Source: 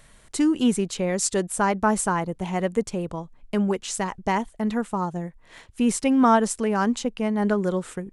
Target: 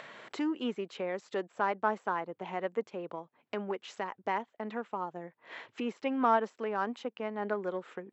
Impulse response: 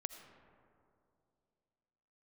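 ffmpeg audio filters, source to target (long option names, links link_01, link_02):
-filter_complex "[0:a]aeval=exprs='0.422*(cos(1*acos(clip(val(0)/0.422,-1,1)))-cos(1*PI/2))+0.0106*(cos(7*acos(clip(val(0)/0.422,-1,1)))-cos(7*PI/2))':channel_layout=same,deesser=0.6,acrossover=split=290 3500:gain=0.112 1 0.0891[link_01][link_02][link_03];[link_01][link_02][link_03]amix=inputs=3:normalize=0,acompressor=mode=upward:threshold=-26dB:ratio=2.5,afftfilt=real='re*between(b*sr/4096,100,7800)':imag='im*between(b*sr/4096,100,7800)':win_size=4096:overlap=0.75,volume=-7dB"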